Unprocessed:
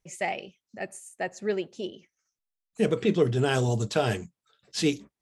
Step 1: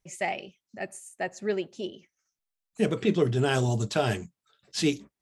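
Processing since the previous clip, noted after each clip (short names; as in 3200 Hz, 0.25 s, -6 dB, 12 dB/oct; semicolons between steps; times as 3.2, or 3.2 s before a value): notch 480 Hz, Q 12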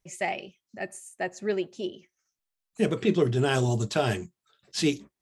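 resonator 360 Hz, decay 0.15 s, harmonics odd, mix 40%; gain +4.5 dB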